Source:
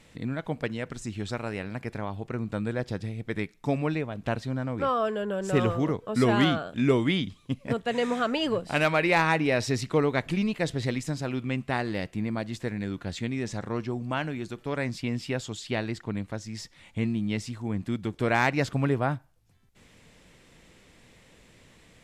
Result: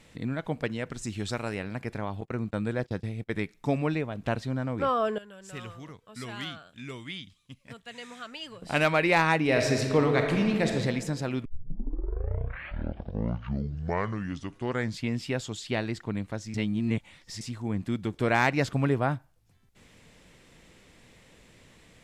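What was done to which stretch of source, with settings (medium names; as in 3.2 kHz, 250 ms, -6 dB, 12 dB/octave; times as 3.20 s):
1.03–1.55 s: treble shelf 4.1 kHz +6.5 dB
2.21–3.34 s: gate -39 dBFS, range -23 dB
5.18–8.62 s: amplifier tone stack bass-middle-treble 5-5-5
9.41–10.72 s: reverb throw, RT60 1.7 s, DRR 2.5 dB
11.45 s: tape start 3.73 s
16.54–17.41 s: reverse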